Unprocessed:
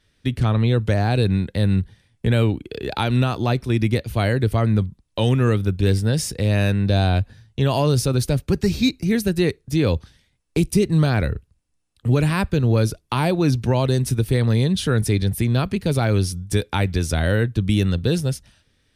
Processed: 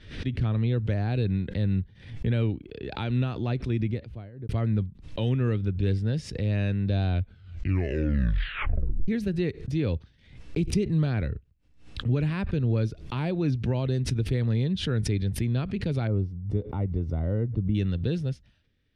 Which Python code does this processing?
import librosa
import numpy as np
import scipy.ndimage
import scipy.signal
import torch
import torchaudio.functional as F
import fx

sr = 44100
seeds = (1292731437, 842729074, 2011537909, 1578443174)

y = fx.studio_fade_out(x, sr, start_s=3.65, length_s=0.84)
y = fx.savgol(y, sr, points=65, at=(16.07, 17.75))
y = fx.edit(y, sr, fx.tape_stop(start_s=7.12, length_s=1.96), tone=tone)
y = scipy.signal.sosfilt(scipy.signal.butter(2, 2900.0, 'lowpass', fs=sr, output='sos'), y)
y = fx.peak_eq(y, sr, hz=970.0, db=-8.0, octaves=1.8)
y = fx.pre_swell(y, sr, db_per_s=97.0)
y = F.gain(torch.from_numpy(y), -6.5).numpy()